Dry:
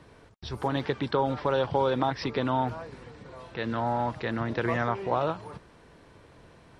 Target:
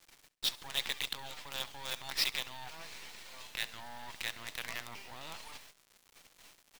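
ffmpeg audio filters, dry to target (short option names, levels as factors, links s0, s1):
-af "agate=range=0.355:threshold=0.00251:ratio=16:detection=peak,highpass=f=750:w=0.5412,highpass=f=750:w=1.3066,aemphasis=mode=reproduction:type=bsi,alimiter=limit=0.0668:level=0:latency=1:release=43,areverse,acompressor=threshold=0.00631:ratio=4,areverse,aexciter=amount=9.9:drive=2.6:freq=2100,acrusher=bits=6:dc=4:mix=0:aa=0.000001,aecho=1:1:67|134|201:0.0944|0.0349|0.0129"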